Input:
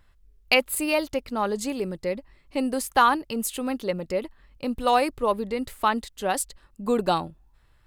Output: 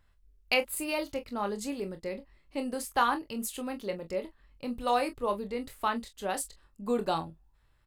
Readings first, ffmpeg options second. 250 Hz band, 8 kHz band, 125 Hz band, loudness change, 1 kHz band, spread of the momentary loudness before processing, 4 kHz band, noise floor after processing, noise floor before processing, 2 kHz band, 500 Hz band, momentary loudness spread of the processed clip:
-7.0 dB, -7.0 dB, -7.5 dB, -7.0 dB, -7.0 dB, 11 LU, -7.0 dB, -66 dBFS, -60 dBFS, -7.0 dB, -6.5 dB, 12 LU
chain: -af "aecho=1:1:25|43:0.376|0.178,volume=-7.5dB"

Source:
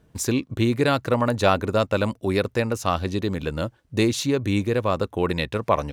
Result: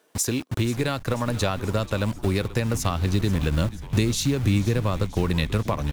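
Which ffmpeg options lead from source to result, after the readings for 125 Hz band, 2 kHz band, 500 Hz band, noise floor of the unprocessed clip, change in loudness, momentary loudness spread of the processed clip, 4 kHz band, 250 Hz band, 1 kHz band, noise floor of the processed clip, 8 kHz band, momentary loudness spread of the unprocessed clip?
+4.0 dB, -3.0 dB, -5.5 dB, -60 dBFS, -1.5 dB, 4 LU, -0.5 dB, -1.5 dB, -6.0 dB, -40 dBFS, +3.5 dB, 6 LU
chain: -filter_complex "[0:a]highshelf=f=4.4k:g=7,acrossover=split=330|4500[a][b][c];[a]acrusher=bits=5:mix=0:aa=0.000001[d];[d][b][c]amix=inputs=3:normalize=0,acompressor=threshold=-25dB:ratio=5,asplit=6[e][f][g][h][i][j];[f]adelay=485,afreqshift=-120,volume=-16dB[k];[g]adelay=970,afreqshift=-240,volume=-20.9dB[l];[h]adelay=1455,afreqshift=-360,volume=-25.8dB[m];[i]adelay=1940,afreqshift=-480,volume=-30.6dB[n];[j]adelay=2425,afreqshift=-600,volume=-35.5dB[o];[e][k][l][m][n][o]amix=inputs=6:normalize=0,asubboost=boost=3:cutoff=240,volume=2.5dB"

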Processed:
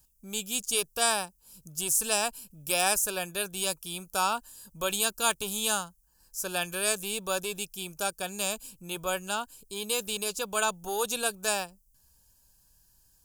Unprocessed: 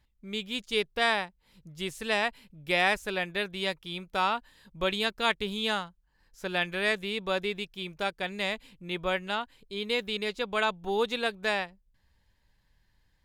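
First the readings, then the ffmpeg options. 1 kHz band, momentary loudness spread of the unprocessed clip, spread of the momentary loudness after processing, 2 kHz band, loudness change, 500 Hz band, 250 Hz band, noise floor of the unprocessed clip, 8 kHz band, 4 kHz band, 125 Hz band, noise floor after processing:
-0.5 dB, 11 LU, 11 LU, -4.0 dB, +1.0 dB, -2.0 dB, -4.0 dB, -70 dBFS, +21.0 dB, -0.5 dB, -3.0 dB, -66 dBFS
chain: -filter_complex "[0:a]acrossover=split=490[a][b];[a]asoftclip=type=tanh:threshold=-38dB[c];[b]aexciter=amount=14.2:drive=2.5:freq=5.5k[d];[c][d]amix=inputs=2:normalize=0,asuperstop=centerf=2000:order=4:qfactor=2.7"

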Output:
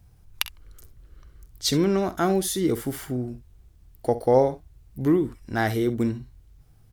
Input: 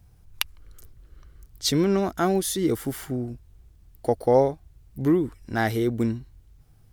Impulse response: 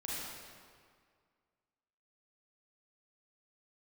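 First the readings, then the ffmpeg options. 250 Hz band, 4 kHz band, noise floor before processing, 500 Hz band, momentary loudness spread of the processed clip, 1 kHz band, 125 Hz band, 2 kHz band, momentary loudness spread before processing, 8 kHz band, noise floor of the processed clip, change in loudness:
0.0 dB, 0.0 dB, -55 dBFS, 0.0 dB, 11 LU, 0.0 dB, 0.0 dB, 0.0 dB, 11 LU, 0.0 dB, -55 dBFS, 0.0 dB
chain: -af "aecho=1:1:47|64:0.141|0.141"

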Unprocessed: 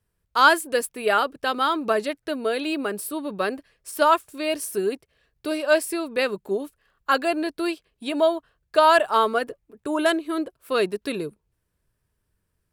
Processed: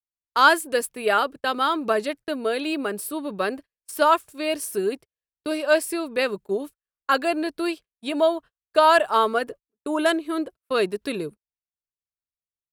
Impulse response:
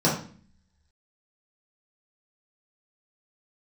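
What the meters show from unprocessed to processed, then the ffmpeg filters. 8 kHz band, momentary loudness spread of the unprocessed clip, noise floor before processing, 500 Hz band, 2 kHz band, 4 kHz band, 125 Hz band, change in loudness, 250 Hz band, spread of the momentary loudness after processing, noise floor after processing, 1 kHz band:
0.0 dB, 14 LU, -76 dBFS, 0.0 dB, 0.0 dB, 0.0 dB, n/a, 0.0 dB, 0.0 dB, 14 LU, under -85 dBFS, 0.0 dB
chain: -af "agate=range=-35dB:threshold=-38dB:ratio=16:detection=peak"

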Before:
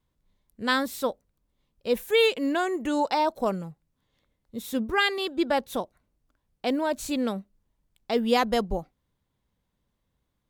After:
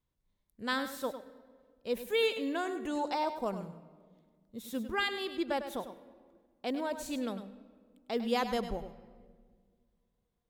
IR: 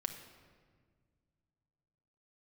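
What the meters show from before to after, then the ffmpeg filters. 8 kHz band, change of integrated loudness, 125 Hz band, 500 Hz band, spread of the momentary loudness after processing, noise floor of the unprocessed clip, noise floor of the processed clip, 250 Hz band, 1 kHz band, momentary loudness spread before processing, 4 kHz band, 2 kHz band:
-8.0 dB, -8.0 dB, -8.0 dB, -8.0 dB, 16 LU, -78 dBFS, -80 dBFS, -8.0 dB, -8.0 dB, 13 LU, -8.0 dB, -8.0 dB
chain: -filter_complex "[0:a]asplit=2[a][b];[1:a]atrim=start_sample=2205,adelay=101[c];[b][c]afir=irnorm=-1:irlink=0,volume=-9.5dB[d];[a][d]amix=inputs=2:normalize=0,volume=-8.5dB"

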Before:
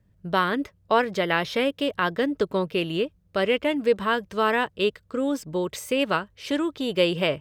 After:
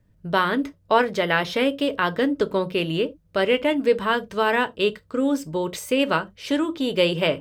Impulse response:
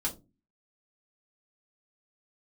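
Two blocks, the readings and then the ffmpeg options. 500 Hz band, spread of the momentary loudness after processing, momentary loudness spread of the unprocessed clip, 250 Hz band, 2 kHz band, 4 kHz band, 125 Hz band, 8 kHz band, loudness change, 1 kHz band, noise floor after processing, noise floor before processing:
+2.0 dB, 5 LU, 5 LU, +3.0 dB, +2.5 dB, +2.0 dB, +2.0 dB, +2.0 dB, +2.0 dB, +2.0 dB, -60 dBFS, -63 dBFS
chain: -filter_complex "[0:a]asplit=2[a][b];[1:a]atrim=start_sample=2205,atrim=end_sample=4410[c];[b][c]afir=irnorm=-1:irlink=0,volume=-11dB[d];[a][d]amix=inputs=2:normalize=0"

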